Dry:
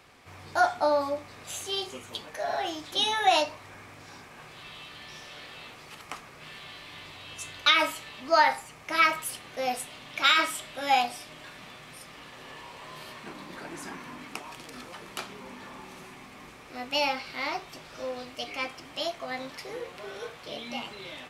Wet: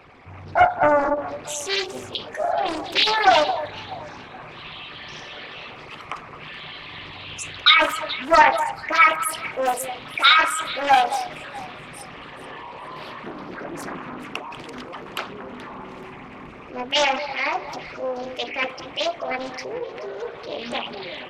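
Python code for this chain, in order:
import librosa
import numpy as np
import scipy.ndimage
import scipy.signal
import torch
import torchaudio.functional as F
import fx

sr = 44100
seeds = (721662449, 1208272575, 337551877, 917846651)

y = fx.envelope_sharpen(x, sr, power=2.0)
y = fx.echo_alternate(y, sr, ms=214, hz=1600.0, feedback_pct=56, wet_db=-10.5)
y = fx.doppler_dist(y, sr, depth_ms=0.52)
y = y * librosa.db_to_amplitude(7.5)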